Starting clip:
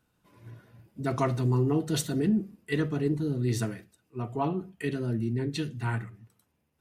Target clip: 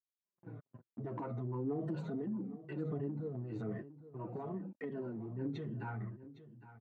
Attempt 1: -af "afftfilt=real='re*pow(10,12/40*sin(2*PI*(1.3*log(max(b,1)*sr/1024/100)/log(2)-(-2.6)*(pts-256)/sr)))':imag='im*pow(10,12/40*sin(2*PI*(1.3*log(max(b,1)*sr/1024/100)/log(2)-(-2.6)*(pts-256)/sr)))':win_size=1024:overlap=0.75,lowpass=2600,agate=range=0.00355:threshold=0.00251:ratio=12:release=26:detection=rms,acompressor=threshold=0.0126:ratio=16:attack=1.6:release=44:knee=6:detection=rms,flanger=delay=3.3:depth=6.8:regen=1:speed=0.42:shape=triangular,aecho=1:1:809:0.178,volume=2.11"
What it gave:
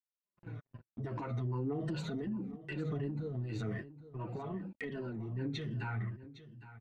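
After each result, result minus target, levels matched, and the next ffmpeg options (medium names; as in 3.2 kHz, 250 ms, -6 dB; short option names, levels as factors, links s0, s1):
2 kHz band +6.5 dB; 125 Hz band +2.5 dB
-af "afftfilt=real='re*pow(10,12/40*sin(2*PI*(1.3*log(max(b,1)*sr/1024/100)/log(2)-(-2.6)*(pts-256)/sr)))':imag='im*pow(10,12/40*sin(2*PI*(1.3*log(max(b,1)*sr/1024/100)/log(2)-(-2.6)*(pts-256)/sr)))':win_size=1024:overlap=0.75,lowpass=970,agate=range=0.00355:threshold=0.00251:ratio=12:release=26:detection=rms,acompressor=threshold=0.0126:ratio=16:attack=1.6:release=44:knee=6:detection=rms,flanger=delay=3.3:depth=6.8:regen=1:speed=0.42:shape=triangular,aecho=1:1:809:0.178,volume=2.11"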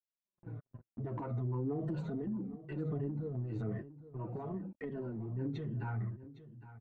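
125 Hz band +2.5 dB
-af "afftfilt=real='re*pow(10,12/40*sin(2*PI*(1.3*log(max(b,1)*sr/1024/100)/log(2)-(-2.6)*(pts-256)/sr)))':imag='im*pow(10,12/40*sin(2*PI*(1.3*log(max(b,1)*sr/1024/100)/log(2)-(-2.6)*(pts-256)/sr)))':win_size=1024:overlap=0.75,lowpass=970,agate=range=0.00355:threshold=0.00251:ratio=12:release=26:detection=rms,acompressor=threshold=0.0126:ratio=16:attack=1.6:release=44:knee=6:detection=rms,highpass=150,flanger=delay=3.3:depth=6.8:regen=1:speed=0.42:shape=triangular,aecho=1:1:809:0.178,volume=2.11"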